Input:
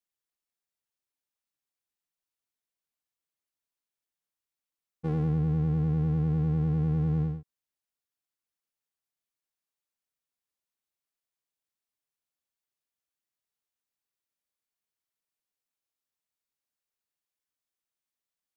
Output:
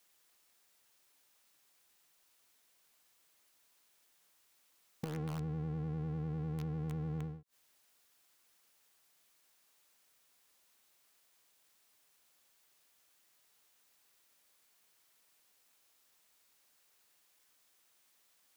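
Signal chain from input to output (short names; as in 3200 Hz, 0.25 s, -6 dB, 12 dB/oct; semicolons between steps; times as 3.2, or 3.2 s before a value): low shelf 250 Hz -8.5 dB; flipped gate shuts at -42 dBFS, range -26 dB; in parallel at -3.5 dB: wrapped overs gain 51 dB; on the sum: gain +15.5 dB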